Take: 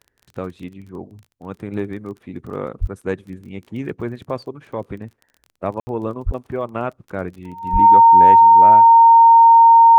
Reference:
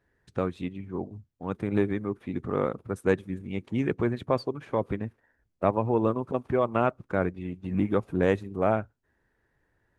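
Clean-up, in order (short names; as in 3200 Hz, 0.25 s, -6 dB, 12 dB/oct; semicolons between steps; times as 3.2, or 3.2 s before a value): de-click; notch 920 Hz, Q 30; 2.8–2.92 HPF 140 Hz 24 dB/oct; 6.25–6.37 HPF 140 Hz 24 dB/oct; 7.72–7.84 HPF 140 Hz 24 dB/oct; room tone fill 5.8–5.87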